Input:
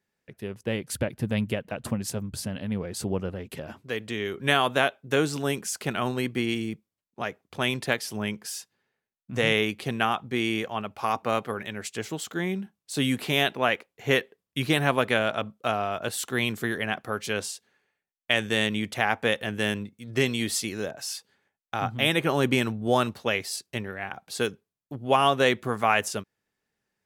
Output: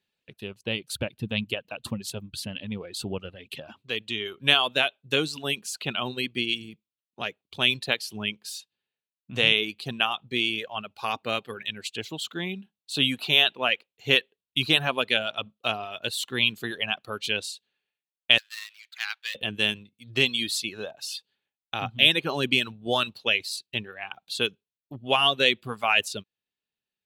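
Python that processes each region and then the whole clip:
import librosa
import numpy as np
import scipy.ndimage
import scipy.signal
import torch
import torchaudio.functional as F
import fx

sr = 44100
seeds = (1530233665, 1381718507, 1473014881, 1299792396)

y = fx.chain(x, sr, fx.median_filter(points=15),
    fx.cheby1_highpass(hz=1500.0, order=3), at=(18.38, 19.35))
y = fx.dereverb_blind(y, sr, rt60_s=1.4)
y = fx.band_shelf(y, sr, hz=3300.0, db=12.0, octaves=1.0)
y = y * librosa.db_to_amplitude(-3.0)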